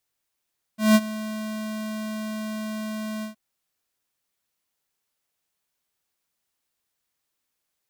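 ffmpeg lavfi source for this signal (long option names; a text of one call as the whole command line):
ffmpeg -f lavfi -i "aevalsrc='0.211*(2*lt(mod(216*t,1),0.5)-1)':duration=2.569:sample_rate=44100,afade=type=in:duration=0.172,afade=type=out:start_time=0.172:duration=0.045:silence=0.133,afade=type=out:start_time=2.45:duration=0.119" out.wav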